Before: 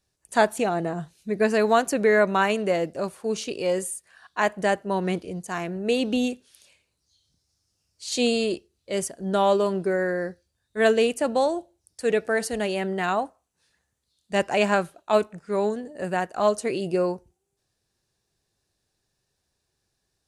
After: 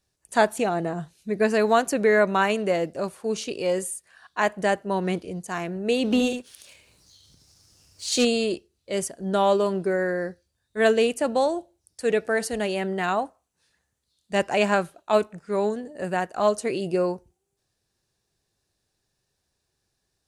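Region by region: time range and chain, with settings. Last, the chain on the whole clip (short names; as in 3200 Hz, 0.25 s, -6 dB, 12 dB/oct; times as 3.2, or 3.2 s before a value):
6.04–8.25 upward compressor, threshold -41 dBFS + echo 74 ms -7.5 dB + sample leveller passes 1
whole clip: dry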